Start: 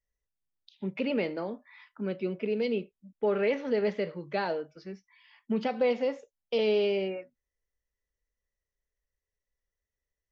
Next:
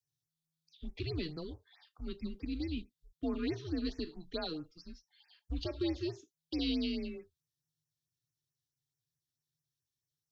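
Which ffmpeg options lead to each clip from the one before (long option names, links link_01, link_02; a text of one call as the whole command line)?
ffmpeg -i in.wav -af "afreqshift=-160,highshelf=frequency=2800:width_type=q:width=3:gain=9,afftfilt=real='re*(1-between(b*sr/1024,650*pow(3800/650,0.5+0.5*sin(2*PI*4.6*pts/sr))/1.41,650*pow(3800/650,0.5+0.5*sin(2*PI*4.6*pts/sr))*1.41))':imag='im*(1-between(b*sr/1024,650*pow(3800/650,0.5+0.5*sin(2*PI*4.6*pts/sr))/1.41,650*pow(3800/650,0.5+0.5*sin(2*PI*4.6*pts/sr))*1.41))':win_size=1024:overlap=0.75,volume=-8dB" out.wav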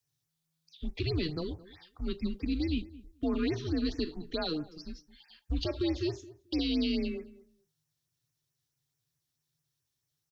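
ffmpeg -i in.wav -filter_complex "[0:a]alimiter=level_in=5.5dB:limit=-24dB:level=0:latency=1:release=55,volume=-5.5dB,asplit=2[link_01][link_02];[link_02]adelay=218,lowpass=frequency=1100:poles=1,volume=-18dB,asplit=2[link_03][link_04];[link_04]adelay=218,lowpass=frequency=1100:poles=1,volume=0.17[link_05];[link_01][link_03][link_05]amix=inputs=3:normalize=0,volume=7dB" out.wav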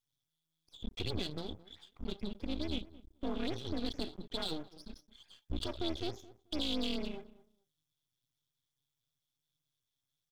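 ffmpeg -i in.wav -af "aeval=exprs='max(val(0),0)':channel_layout=same,equalizer=frequency=3400:width_type=o:width=0.21:gain=14.5,bandreject=frequency=1800:width=18,volume=-2.5dB" out.wav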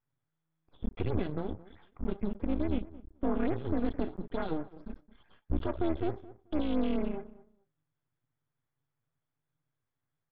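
ffmpeg -i in.wav -af "lowpass=frequency=1900:width=0.5412,lowpass=frequency=1900:width=1.3066,volume=7dB" out.wav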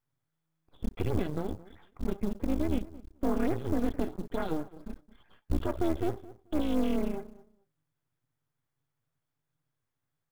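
ffmpeg -i in.wav -af "acrusher=bits=7:mode=log:mix=0:aa=0.000001,volume=1.5dB" out.wav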